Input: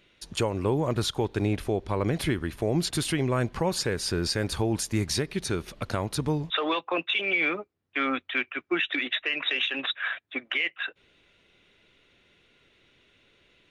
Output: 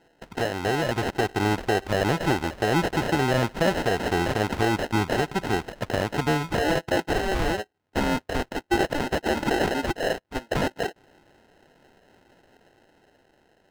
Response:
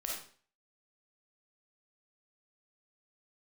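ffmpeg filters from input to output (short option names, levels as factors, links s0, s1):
-filter_complex "[0:a]acrusher=samples=38:mix=1:aa=0.000001,dynaudnorm=f=120:g=17:m=1.78,asplit=2[s0][s1];[s1]highpass=f=720:p=1,volume=3.16,asoftclip=type=tanh:threshold=0.299[s2];[s0][s2]amix=inputs=2:normalize=0,lowpass=f=3200:p=1,volume=0.501"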